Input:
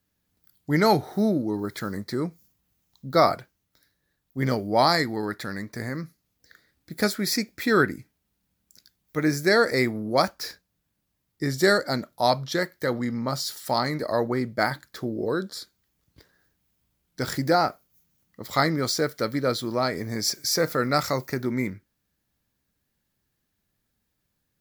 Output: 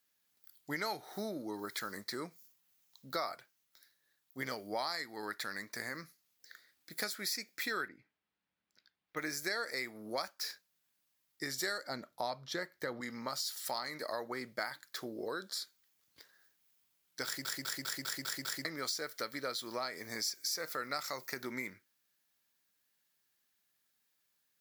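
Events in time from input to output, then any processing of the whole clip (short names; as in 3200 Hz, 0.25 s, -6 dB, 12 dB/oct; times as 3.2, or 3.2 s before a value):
7.88–9.17 air absorption 350 m
11.87–13.01 tilt -2.5 dB/oct
17.25 stutter in place 0.20 s, 7 plays
whole clip: HPF 1500 Hz 6 dB/oct; compressor 4:1, threshold -37 dBFS; gain +1 dB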